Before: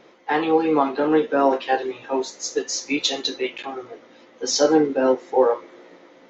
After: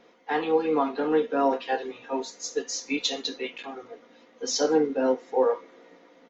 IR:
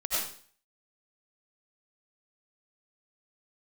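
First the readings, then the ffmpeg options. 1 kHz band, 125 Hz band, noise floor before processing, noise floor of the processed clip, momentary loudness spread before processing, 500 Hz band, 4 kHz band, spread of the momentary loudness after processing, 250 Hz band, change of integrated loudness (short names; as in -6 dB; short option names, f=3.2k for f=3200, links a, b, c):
-6.0 dB, -8.0 dB, -51 dBFS, -57 dBFS, 10 LU, -5.0 dB, -5.5 dB, 12 LU, -6.0 dB, -5.5 dB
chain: -af "aecho=1:1:4.2:0.44,volume=-6.5dB"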